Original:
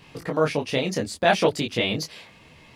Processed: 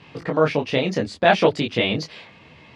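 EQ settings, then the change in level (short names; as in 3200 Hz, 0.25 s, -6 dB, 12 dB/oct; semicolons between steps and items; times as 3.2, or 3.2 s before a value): HPF 71 Hz; LPF 4000 Hz 12 dB/oct; +3.5 dB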